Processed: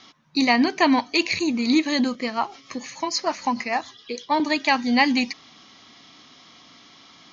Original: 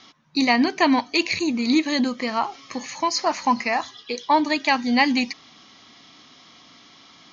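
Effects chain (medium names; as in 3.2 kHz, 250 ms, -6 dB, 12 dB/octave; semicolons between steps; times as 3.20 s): 2.15–4.40 s: rotary cabinet horn 6.7 Hz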